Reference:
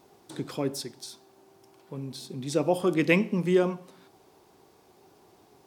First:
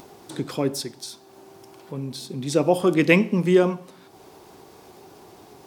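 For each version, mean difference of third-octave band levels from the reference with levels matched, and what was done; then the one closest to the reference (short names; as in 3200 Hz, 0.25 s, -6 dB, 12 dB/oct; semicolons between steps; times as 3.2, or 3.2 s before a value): 1.5 dB: upward compressor, threshold -45 dBFS; gain +5.5 dB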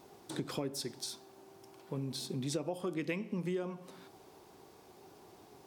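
8.0 dB: compressor 10:1, threshold -34 dBFS, peak gain reduction 18 dB; gain +1 dB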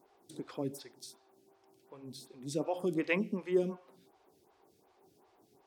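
4.0 dB: photocell phaser 2.7 Hz; gain -6 dB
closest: first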